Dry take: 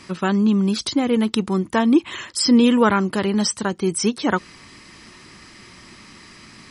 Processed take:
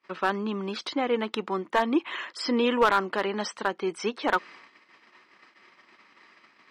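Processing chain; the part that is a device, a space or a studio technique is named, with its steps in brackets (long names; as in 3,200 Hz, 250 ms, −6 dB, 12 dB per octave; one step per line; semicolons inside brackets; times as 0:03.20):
walkie-talkie (band-pass filter 500–2,600 Hz; hard clipping −14 dBFS, distortion −14 dB; noise gate −47 dBFS, range −30 dB)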